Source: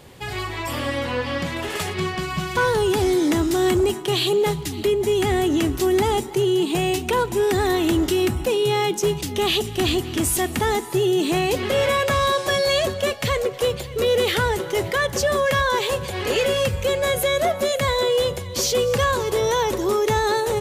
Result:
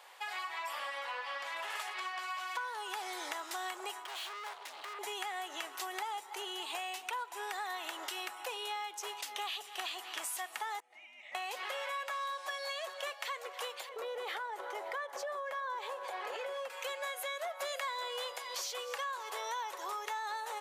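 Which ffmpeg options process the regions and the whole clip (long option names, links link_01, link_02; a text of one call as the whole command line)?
ffmpeg -i in.wav -filter_complex "[0:a]asettb=1/sr,asplit=3[link_01][link_02][link_03];[link_01]atrim=end=4.044[link_04];[link_02]atrim=start=4.04:end=4.99,asetpts=PTS-STARTPTS,afade=type=in:duration=0.004:curve=qsin,afade=type=out:start_time=0.946:duration=0.004:curve=qsin,highshelf=frequency=6600:gain=-10.5,volume=32dB,asoftclip=hard,volume=-32dB[link_05];[link_03]atrim=start=4.986[link_06];[link_04][link_05]acrossfade=duration=0.004:curve1=hsin:curve2=qsin[link_07];[link_07][link_06]acrossfade=duration=0.004:curve1=qsin:curve2=hsin,asettb=1/sr,asplit=3[link_08][link_09][link_10];[link_08]atrim=end=10.804[link_11];[link_09]atrim=start=10.8:end=11.35,asetpts=PTS-STARTPTS,afade=type=in:duration=0.004:curve=qsin,afade=type=out:start_time=0.546:duration=0.004:curve=qsin,asplit=3[link_12][link_13][link_14];[link_12]bandpass=frequency=730:width_type=q:width=8,volume=0dB[link_15];[link_13]bandpass=frequency=1090:width_type=q:width=8,volume=-6dB[link_16];[link_14]bandpass=frequency=2440:width_type=q:width=8,volume=-9dB[link_17];[link_15][link_16][link_17]amix=inputs=3:normalize=0,afreqshift=-490[link_18];[link_10]atrim=start=11.346[link_19];[link_11][link_18]acrossfade=duration=0.004:curve1=hsin:curve2=qsin[link_20];[link_20][link_19]acrossfade=duration=0.004:curve1=qsin:curve2=hsin,asettb=1/sr,asplit=3[link_21][link_22][link_23];[link_21]atrim=end=13.894[link_24];[link_22]atrim=start=13.89:end=16.7,asetpts=PTS-STARTPTS,afade=type=in:duration=0.004:curve=qsin,afade=type=out:start_time=2.806:duration=0.004:curve=qsin,tiltshelf=frequency=1100:gain=8.5,bandreject=frequency=2800:width=22,acompressor=threshold=-17dB:ratio=6:attack=3.2:release=140:knee=1:detection=peak[link_25];[link_23]atrim=start=16.696[link_26];[link_24][link_25]acrossfade=duration=0.004:curve1=hsin:curve2=qsin[link_27];[link_27][link_26]acrossfade=duration=0.004:curve1=qsin:curve2=hsin,asettb=1/sr,asplit=3[link_28][link_29][link_30];[link_28]atrim=end=17.604[link_31];[link_29]atrim=start=17.6:end=18.55,asetpts=PTS-STARTPTS,afade=type=in:duration=0.004:curve=qsin,afade=type=out:start_time=0.946:duration=0.004:curve=qsin,acontrast=72,aeval=exprs='val(0)+0.00891*sin(2*PI*4900*n/s)':channel_layout=same[link_32];[link_30]atrim=start=18.546[link_33];[link_31][link_32]acrossfade=duration=0.004:curve1=hsin:curve2=qsin[link_34];[link_34][link_33]acrossfade=duration=0.004:curve1=qsin:curve2=hsin,highpass=frequency=810:width=0.5412,highpass=frequency=810:width=1.3066,highshelf=frequency=2100:gain=-9.5,acompressor=threshold=-37dB:ratio=6" out.wav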